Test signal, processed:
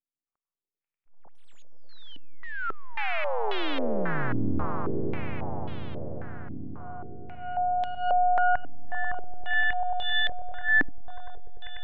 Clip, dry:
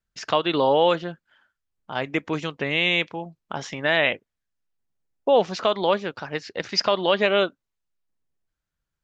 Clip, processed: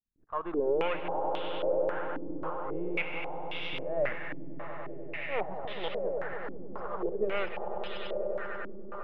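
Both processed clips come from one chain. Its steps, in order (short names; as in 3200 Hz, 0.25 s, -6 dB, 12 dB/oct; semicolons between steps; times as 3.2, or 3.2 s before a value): half-wave gain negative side -12 dB; auto swell 0.141 s; air absorption 270 m; swelling echo 98 ms, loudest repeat 8, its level -11 dB; stepped low-pass 3.7 Hz 280–3400 Hz; gain -8.5 dB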